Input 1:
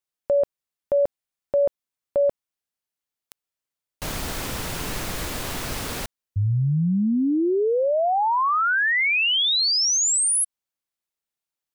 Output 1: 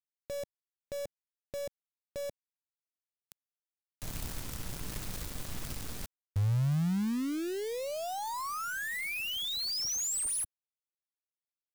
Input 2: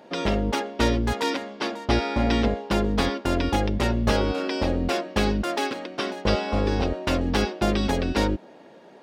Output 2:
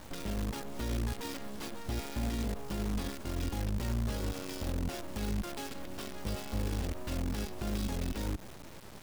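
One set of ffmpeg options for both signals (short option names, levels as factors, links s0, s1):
-af "acrusher=bits=5:dc=4:mix=0:aa=0.000001,acompressor=threshold=0.0158:ratio=5:attack=0.25:release=65:knee=1:detection=peak,bass=f=250:g=10,treble=f=4000:g=4,volume=0.794"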